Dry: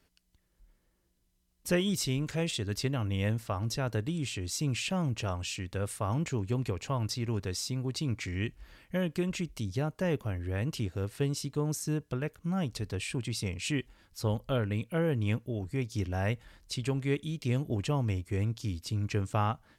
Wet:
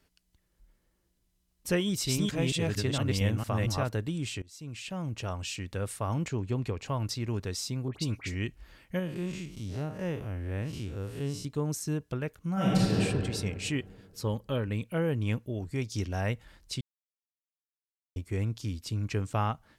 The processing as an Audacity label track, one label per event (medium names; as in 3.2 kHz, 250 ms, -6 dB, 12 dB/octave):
1.840000	3.890000	chunks repeated in reverse 228 ms, level 0 dB
4.420000	5.470000	fade in, from -23 dB
6.280000	6.860000	treble shelf 7.9 kHz -9 dB
7.880000	8.340000	phase dispersion highs, late by 61 ms, half as late at 2.1 kHz
8.990000	11.450000	spectral blur width 121 ms
12.530000	12.970000	reverb throw, RT60 2.1 s, DRR -8.5 dB
14.210000	14.680000	comb of notches 700 Hz
15.570000	16.210000	dynamic bell 5.6 kHz, up to +6 dB, over -60 dBFS, Q 0.84
16.810000	18.160000	mute